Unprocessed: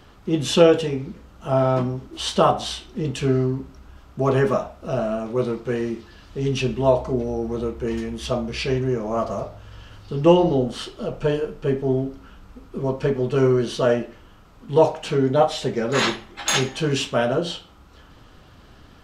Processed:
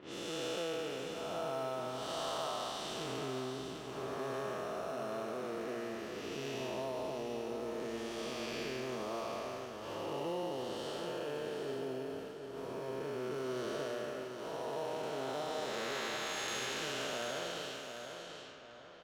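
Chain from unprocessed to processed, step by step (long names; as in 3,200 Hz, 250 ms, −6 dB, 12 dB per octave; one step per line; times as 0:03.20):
spectrum smeared in time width 465 ms
high-pass filter 1,200 Hz 6 dB per octave
in parallel at −9.5 dB: sample-rate reduction 4,800 Hz
on the sum: downward compressor 2.5 to 1, threshold −55 dBFS, peak gain reduction 19.5 dB
noise gate −54 dBFS, range −11 dB
on a send: repeating echo 743 ms, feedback 40%, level −7 dB
on the sum: low-pass that shuts in the quiet parts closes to 2,000 Hz, open at −50.5 dBFS
one half of a high-frequency compander decoder only
level +9 dB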